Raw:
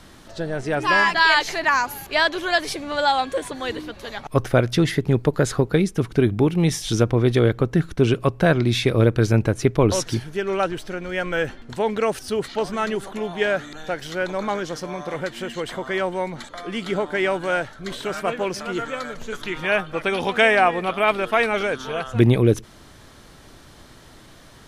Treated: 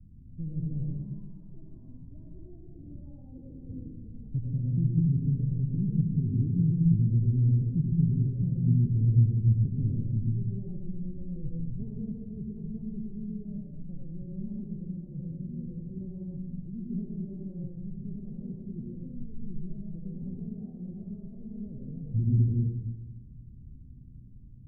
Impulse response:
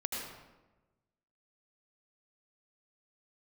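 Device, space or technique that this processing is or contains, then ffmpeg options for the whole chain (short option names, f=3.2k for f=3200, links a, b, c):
club heard from the street: -filter_complex "[0:a]alimiter=limit=-13dB:level=0:latency=1:release=362,lowpass=f=180:w=0.5412,lowpass=f=180:w=1.3066[a];[1:a]atrim=start_sample=2205[b];[a][b]afir=irnorm=-1:irlink=0"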